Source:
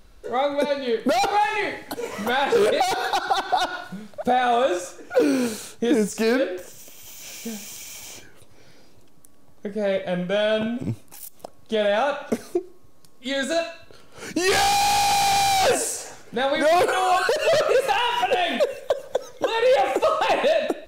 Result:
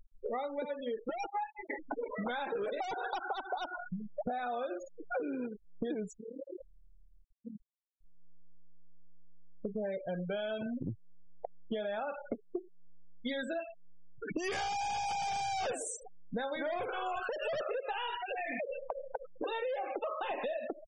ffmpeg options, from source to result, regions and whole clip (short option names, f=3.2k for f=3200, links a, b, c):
-filter_complex "[0:a]asettb=1/sr,asplit=3[a][b][c];[a]atrim=end=1.054[d];[b]atrim=start=1.05:end=1.7,asetpts=PTS-STARTPTS,afade=t=in:d=0.004:c=qsin,afade=t=out:st=0.646:d=0.004:c=qsin,agate=range=-33dB:threshold=-15dB:ratio=3:release=100:detection=peak,aecho=1:1:5.9:0.7,atrim=end_sample=28665[e];[c]atrim=start=1.696[f];[d][e]acrossfade=d=0.004:c1=hsin:c2=qsin[g];[g][f]acrossfade=d=0.004:c1=qsin:c2=hsin,asettb=1/sr,asplit=3[h][i][j];[h]atrim=end=6.184[k];[i]atrim=start=6.18:end=8.04,asetpts=PTS-STARTPTS,afade=t=in:d=0.004:c=qsin,afade=t=out:st=1.856:d=0.004:c=qsin,tremolo=f=37:d=0.919,acompressor=threshold=-35dB:ratio=16:attack=3.2:release=140:knee=1:detection=peak[l];[j]atrim=start=8.036[m];[k][l]acrossfade=d=0.004:c1=hsin:c2=qsin[n];[n][m]acrossfade=d=0.004:c1=qsin:c2=hsin,asettb=1/sr,asplit=3[o][p][q];[o]atrim=end=16.614[r];[p]atrim=start=16.61:end=17.2,asetpts=PTS-STARTPTS,afade=t=in:d=0.004:c=qsin,afade=t=out:st=0.586:d=0.004:c=qsin,asubboost=boost=11:cutoff=210,asplit=2[s][t];[t]adelay=46,volume=-6.5dB[u];[s][u]amix=inputs=2:normalize=0,atrim=end_sample=26019[v];[q]atrim=start=17.196[w];[r][v]acrossfade=d=0.004:c1=hsin:c2=qsin[x];[x][w]acrossfade=d=0.004:c1=qsin:c2=hsin,asettb=1/sr,asplit=3[y][z][aa];[y]atrim=end=18.154[ab];[z]atrim=start=18.15:end=19.46,asetpts=PTS-STARTPTS,afade=t=in:d=0.004:c=qsin,afade=t=out:st=1.306:d=0.004:c=qsin,acompressor=threshold=-27dB:ratio=8:attack=3.2:release=140:knee=1:detection=peak,lowpass=f=2.2k:t=q:w=2,aeval=exprs='sgn(val(0))*max(abs(val(0))-0.0015,0)':c=same[ac];[aa]atrim=start=19.456[ad];[ab][ac]acrossfade=d=0.004:c1=hsin:c2=qsin[ae];[ae][ad]acrossfade=d=0.004:c1=qsin:c2=hsin,bandreject=f=4.1k:w=6.9,afftfilt=real='re*gte(hypot(re,im),0.0631)':imag='im*gte(hypot(re,im),0.0631)':win_size=1024:overlap=0.75,acompressor=threshold=-34dB:ratio=10"